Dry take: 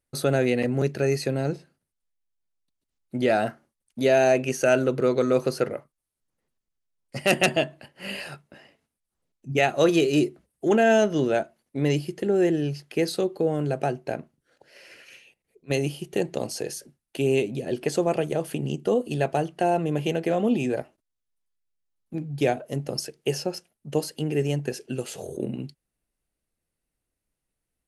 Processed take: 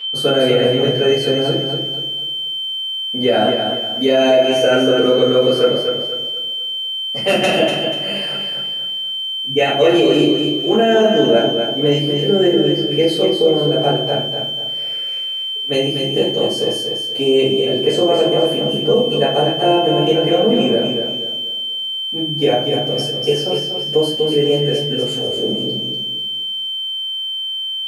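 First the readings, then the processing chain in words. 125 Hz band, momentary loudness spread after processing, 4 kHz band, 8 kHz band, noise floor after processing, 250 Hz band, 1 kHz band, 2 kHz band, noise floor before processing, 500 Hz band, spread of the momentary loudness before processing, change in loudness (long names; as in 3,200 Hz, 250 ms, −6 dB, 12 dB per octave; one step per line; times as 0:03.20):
+5.0 dB, 7 LU, +23.0 dB, +2.0 dB, −23 dBFS, +8.0 dB, +7.5 dB, +5.0 dB, −84 dBFS, +10.0 dB, 14 LU, +9.0 dB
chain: steady tone 3,100 Hz −27 dBFS
high-pass filter 250 Hz 6 dB per octave
high-shelf EQ 2,000 Hz −7.5 dB
rectangular room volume 43 cubic metres, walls mixed, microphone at 2 metres
boost into a limiter +2.5 dB
feedback echo at a low word length 243 ms, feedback 35%, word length 7 bits, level −6 dB
level −3.5 dB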